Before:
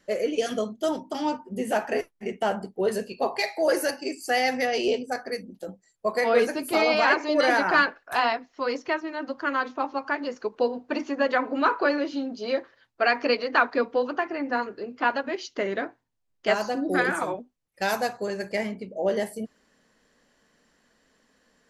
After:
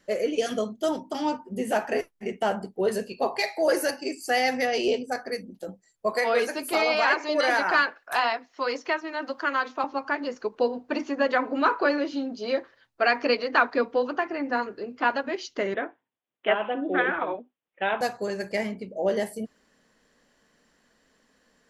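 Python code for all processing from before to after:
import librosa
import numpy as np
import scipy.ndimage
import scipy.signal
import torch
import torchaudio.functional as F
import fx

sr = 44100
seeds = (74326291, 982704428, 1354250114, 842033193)

y = fx.chain(x, sr, fx.low_shelf(hz=290.0, db=-12.0),
    fx.band_squash(depth_pct=40), at=(6.12, 9.84))
y = fx.chain(y, sr, fx.bandpass_edges(low_hz=260.0, high_hz=4700.0),
    fx.resample_bad(factor=6, down='none', up='filtered'), at=(15.74, 18.01))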